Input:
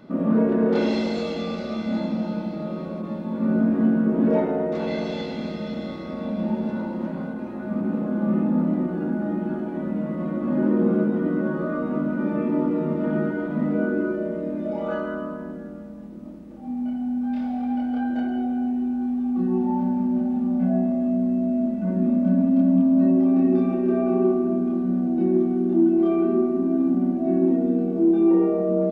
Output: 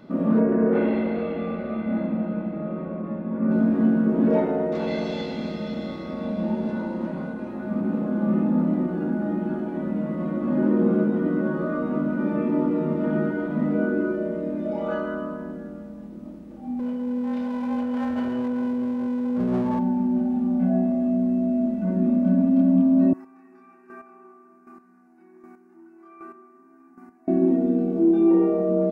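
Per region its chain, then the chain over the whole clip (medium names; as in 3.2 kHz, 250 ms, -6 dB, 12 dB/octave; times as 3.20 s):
0.40–3.51 s: low-pass 2.3 kHz 24 dB/octave + band-stop 880 Hz, Q 18
6.22–7.49 s: doubling 21 ms -12.5 dB + careless resampling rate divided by 2×, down none, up filtered
16.79–19.79 s: comb filter that takes the minimum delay 4.7 ms + high-pass 70 Hz
23.13–27.28 s: high-pass 930 Hz + static phaser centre 1.4 kHz, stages 4 + square tremolo 1.3 Hz, depth 65%, duty 15%
whole clip: none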